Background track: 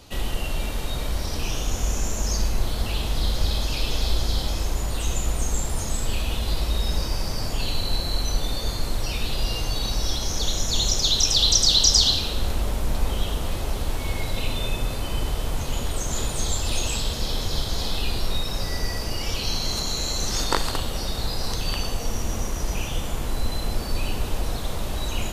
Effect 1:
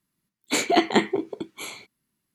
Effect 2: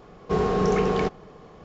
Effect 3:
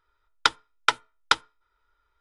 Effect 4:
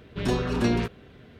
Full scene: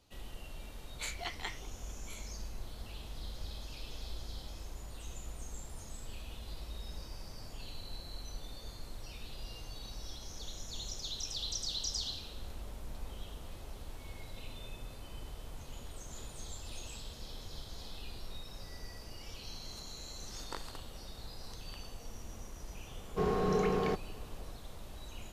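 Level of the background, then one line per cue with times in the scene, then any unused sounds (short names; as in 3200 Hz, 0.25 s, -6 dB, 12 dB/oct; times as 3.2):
background track -20 dB
0.49 add 1 -15 dB + HPF 1100 Hz
22.87 add 2 -8.5 dB
not used: 3, 4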